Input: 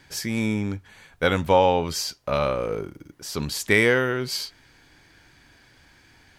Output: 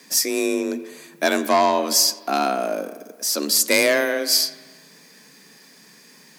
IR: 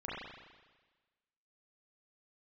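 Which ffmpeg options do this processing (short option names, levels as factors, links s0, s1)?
-filter_complex "[0:a]aeval=exprs='0.596*sin(PI/2*1.78*val(0)/0.596)':c=same,aexciter=amount=4.2:drive=2.7:freq=4300,afreqshift=140,asplit=2[s0][s1];[1:a]atrim=start_sample=2205,lowpass=8000,adelay=88[s2];[s1][s2]afir=irnorm=-1:irlink=0,volume=0.141[s3];[s0][s3]amix=inputs=2:normalize=0,volume=0.473"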